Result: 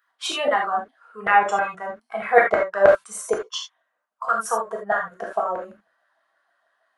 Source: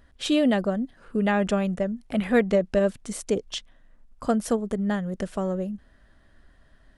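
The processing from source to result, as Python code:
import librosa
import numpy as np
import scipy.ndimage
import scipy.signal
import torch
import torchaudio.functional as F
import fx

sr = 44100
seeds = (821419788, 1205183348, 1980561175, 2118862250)

y = fx.noise_reduce_blind(x, sr, reduce_db=14)
y = fx.filter_lfo_highpass(y, sr, shape='saw_down', hz=6.3, low_hz=610.0, high_hz=1500.0, q=4.8)
y = fx.rev_gated(y, sr, seeds[0], gate_ms=100, shape='flat', drr_db=-1.0)
y = fx.band_squash(y, sr, depth_pct=40, at=(2.88, 3.35))
y = y * 10.0 ** (1.5 / 20.0)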